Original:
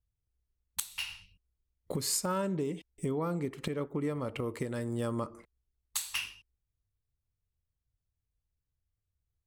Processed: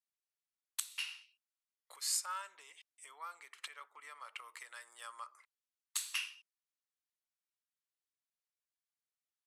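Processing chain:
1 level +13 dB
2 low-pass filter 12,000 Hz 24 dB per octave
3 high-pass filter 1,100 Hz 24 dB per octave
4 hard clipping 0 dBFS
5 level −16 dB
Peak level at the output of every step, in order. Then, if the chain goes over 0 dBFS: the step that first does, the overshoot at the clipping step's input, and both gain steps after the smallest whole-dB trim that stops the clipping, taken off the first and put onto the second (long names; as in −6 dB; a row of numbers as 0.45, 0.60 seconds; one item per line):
−3.0, −2.0, −3.0, −3.0, −19.0 dBFS
no step passes full scale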